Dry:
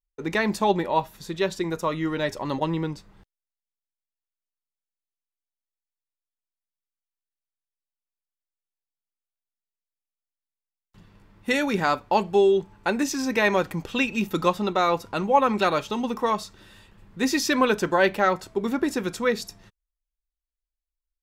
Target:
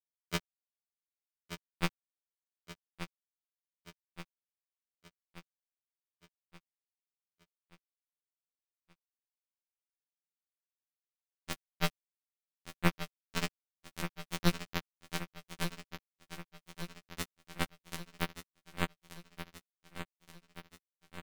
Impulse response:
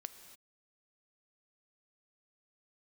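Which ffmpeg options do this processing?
-af "afftfilt=real='re*pow(10,11/40*sin(2*PI*(0.55*log(max(b,1)*sr/1024/100)/log(2)-(0.32)*(pts-256)/sr)))':imag='im*pow(10,11/40*sin(2*PI*(0.55*log(max(b,1)*sr/1024/100)/log(2)-(0.32)*(pts-256)/sr)))':win_size=1024:overlap=0.75,equalizer=f=3700:t=o:w=0.39:g=3.5,acompressor=threshold=0.0224:ratio=6,acrusher=bits=3:mix=0:aa=0.000001,bass=f=250:g=12,treble=f=4000:g=-7,aecho=1:1:5.2:0.49,aecho=1:1:1178|2356|3534|4712|5890|7068:0.316|0.177|0.0992|0.0555|0.0311|0.0174,afftfilt=real='re*2*eq(mod(b,4),0)':imag='im*2*eq(mod(b,4),0)':win_size=2048:overlap=0.75,volume=3.35"

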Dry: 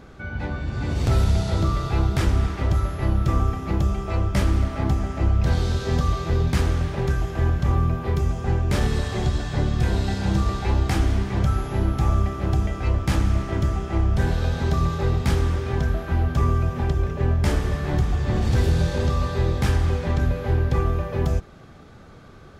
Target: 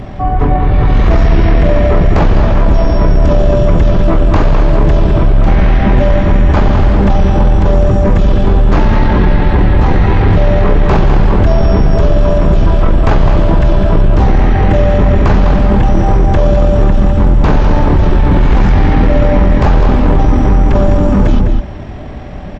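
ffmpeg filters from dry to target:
-filter_complex "[0:a]acrossover=split=3300[s0][s1];[s1]acompressor=threshold=0.00316:ratio=4:attack=1:release=60[s2];[s0][s2]amix=inputs=2:normalize=0,asetrate=22050,aresample=44100,atempo=2,asplit=2[s3][s4];[s4]adelay=204.1,volume=0.447,highshelf=f=4000:g=-4.59[s5];[s3][s5]amix=inputs=2:normalize=0,apsyclip=16.8,volume=0.668"

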